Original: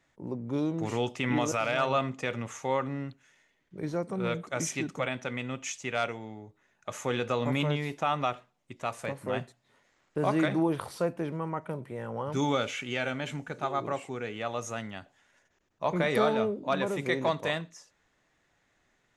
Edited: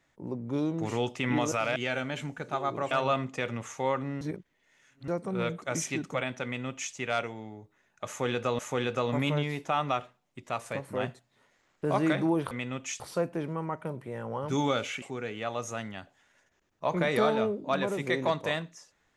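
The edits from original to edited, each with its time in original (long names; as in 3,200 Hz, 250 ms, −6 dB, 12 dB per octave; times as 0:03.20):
0:03.06–0:03.93: reverse
0:05.29–0:05.78: duplicate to 0:10.84
0:06.92–0:07.44: repeat, 2 plays
0:12.86–0:14.01: move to 0:01.76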